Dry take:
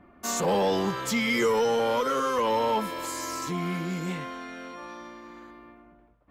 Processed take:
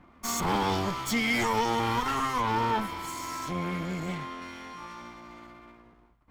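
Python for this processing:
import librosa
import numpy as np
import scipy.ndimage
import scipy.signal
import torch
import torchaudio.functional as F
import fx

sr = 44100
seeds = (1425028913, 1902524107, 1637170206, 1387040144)

y = fx.lower_of_two(x, sr, delay_ms=0.9)
y = fx.high_shelf(y, sr, hz=4200.0, db=-5.5, at=(2.41, 4.42))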